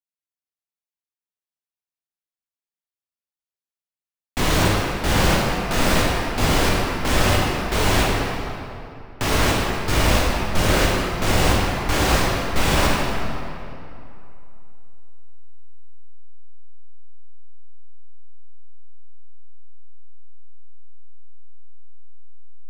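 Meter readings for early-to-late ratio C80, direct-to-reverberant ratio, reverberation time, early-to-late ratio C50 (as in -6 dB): -0.5 dB, -4.5 dB, 2.8 s, -2.0 dB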